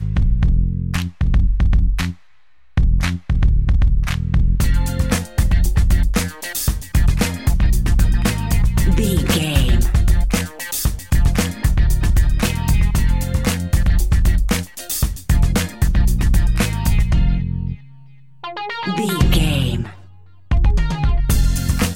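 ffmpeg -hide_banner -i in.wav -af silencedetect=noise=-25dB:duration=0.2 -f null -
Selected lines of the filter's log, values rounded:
silence_start: 2.12
silence_end: 2.77 | silence_duration: 0.66
silence_start: 17.75
silence_end: 18.44 | silence_duration: 0.69
silence_start: 19.90
silence_end: 20.51 | silence_duration: 0.61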